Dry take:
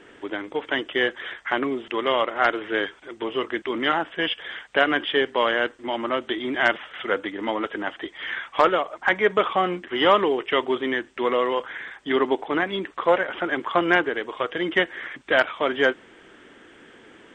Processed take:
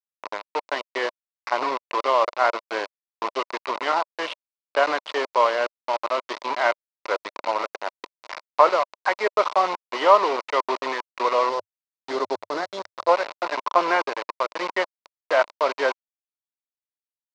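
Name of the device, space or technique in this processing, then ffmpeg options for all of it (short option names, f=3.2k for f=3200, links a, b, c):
hand-held game console: -filter_complex "[0:a]acrusher=bits=3:mix=0:aa=0.000001,highpass=480,equalizer=f=600:t=q:w=4:g=6,equalizer=f=1k:t=q:w=4:g=9,equalizer=f=1.7k:t=q:w=4:g=-7,equalizer=f=3.2k:t=q:w=4:g=-9,lowpass=f=4.5k:w=0.5412,lowpass=f=4.5k:w=1.3066,asettb=1/sr,asplit=3[a][b][c];[a]atrim=end=11.494[d];[b]atrim=start=11.49:end=13.09,asetpts=PTS-STARTPTS,afade=t=in:d=0.004:c=qsin,afade=t=out:st=1.596:d=0.004:c=qsin,equalizer=f=100:t=o:w=0.67:g=11,equalizer=f=1k:t=o:w=0.67:g=-7,equalizer=f=2.5k:t=o:w=0.67:g=-9[e];[c]atrim=start=13.086[f];[d][e]acrossfade=d=0.004:c1=hsin:c2=qsin[g];[g][f]acrossfade=d=0.004:c1=qsin:c2=hsin,volume=-1dB"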